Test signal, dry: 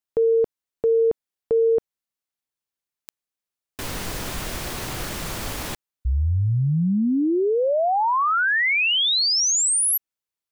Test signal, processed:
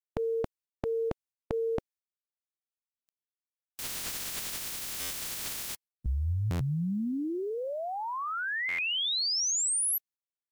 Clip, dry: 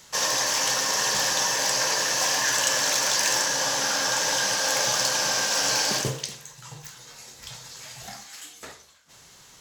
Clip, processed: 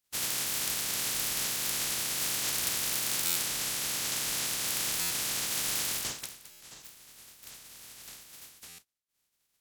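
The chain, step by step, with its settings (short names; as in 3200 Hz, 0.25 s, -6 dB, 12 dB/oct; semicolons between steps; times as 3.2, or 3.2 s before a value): spectral limiter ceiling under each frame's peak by 27 dB; gate -48 dBFS, range -25 dB; bell 750 Hz -5.5 dB 2.8 oct; stuck buffer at 3.25/5/6.5/8.68, samples 512, times 8; gain -6.5 dB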